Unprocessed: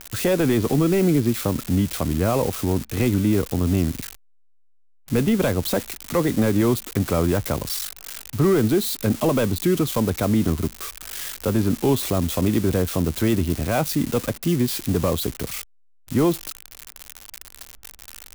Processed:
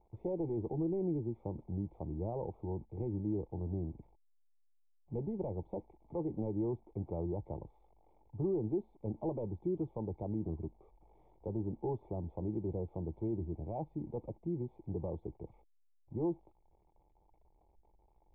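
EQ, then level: cascade formant filter u; static phaser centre 650 Hz, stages 4; 0.0 dB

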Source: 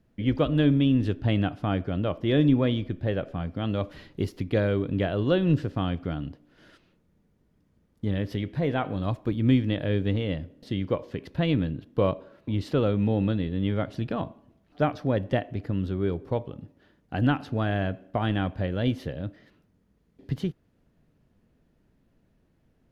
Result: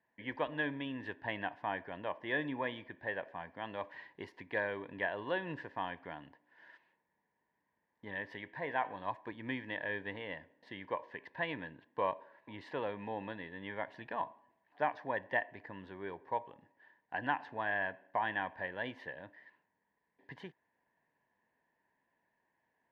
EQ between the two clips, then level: two resonant band-passes 1.3 kHz, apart 0.85 oct; +5.5 dB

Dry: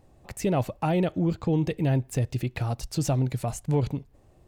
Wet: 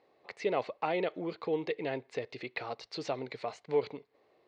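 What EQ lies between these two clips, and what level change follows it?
cabinet simulation 430–4600 Hz, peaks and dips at 440 Hz +9 dB, 1.1 kHz +4 dB, 2.1 kHz +9 dB, 4.2 kHz +7 dB; -5.0 dB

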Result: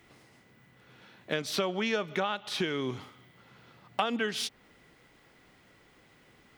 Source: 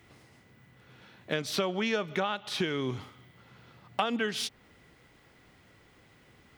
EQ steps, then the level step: peaking EQ 83 Hz -7 dB 1.3 oct; 0.0 dB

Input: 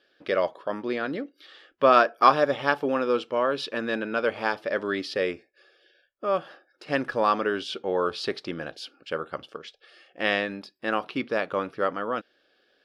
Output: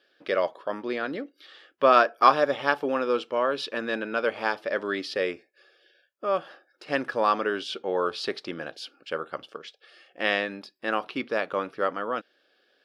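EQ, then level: high-pass 230 Hz 6 dB/octave; 0.0 dB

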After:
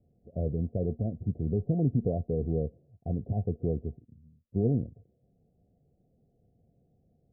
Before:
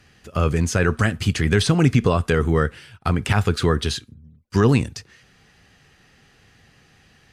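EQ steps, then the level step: rippled Chebyshev low-pass 720 Hz, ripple 3 dB; -9.0 dB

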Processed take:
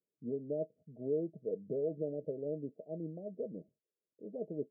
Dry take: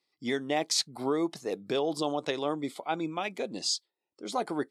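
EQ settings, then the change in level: rippled Chebyshev low-pass 650 Hz, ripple 9 dB; -1.0 dB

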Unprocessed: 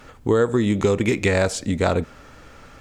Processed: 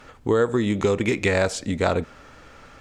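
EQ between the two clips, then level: bass shelf 350 Hz -4 dB; treble shelf 10 kHz -9 dB; 0.0 dB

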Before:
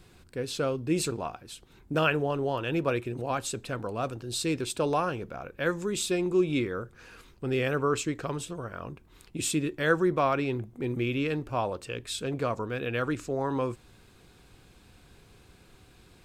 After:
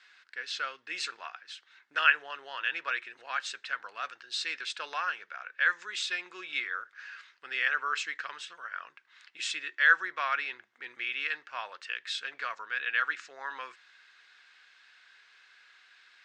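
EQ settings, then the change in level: resonant high-pass 1.7 kHz, resonance Q 3.1; low-pass 5.8 kHz 24 dB/octave; band-stop 2.4 kHz, Q 19; 0.0 dB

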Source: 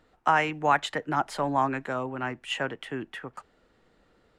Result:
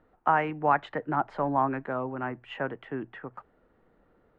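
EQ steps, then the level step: low-pass 1.5 kHz 12 dB/octave; hum notches 60/120 Hz; 0.0 dB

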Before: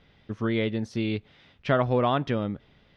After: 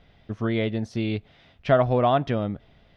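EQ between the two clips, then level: bass shelf 84 Hz +8 dB; peaking EQ 680 Hz +9 dB 0.29 oct; 0.0 dB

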